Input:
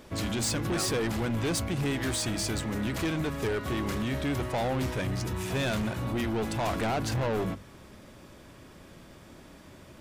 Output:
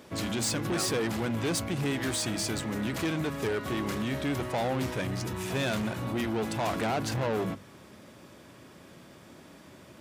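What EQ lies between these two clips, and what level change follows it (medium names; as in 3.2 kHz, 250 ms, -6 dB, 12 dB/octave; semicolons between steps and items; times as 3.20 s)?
high-pass 110 Hz 12 dB/octave; 0.0 dB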